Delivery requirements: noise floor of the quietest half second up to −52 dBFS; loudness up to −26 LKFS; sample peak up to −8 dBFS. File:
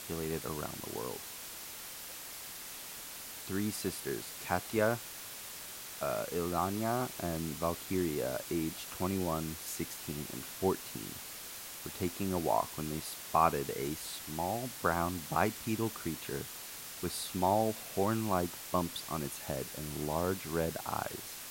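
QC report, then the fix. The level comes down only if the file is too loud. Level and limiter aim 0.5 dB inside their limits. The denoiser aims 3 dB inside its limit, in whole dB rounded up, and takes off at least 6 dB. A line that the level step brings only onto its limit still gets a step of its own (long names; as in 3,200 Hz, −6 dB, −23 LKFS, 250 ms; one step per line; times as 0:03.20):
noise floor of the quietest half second −46 dBFS: out of spec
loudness −36.0 LKFS: in spec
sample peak −12.5 dBFS: in spec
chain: broadband denoise 9 dB, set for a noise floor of −46 dBFS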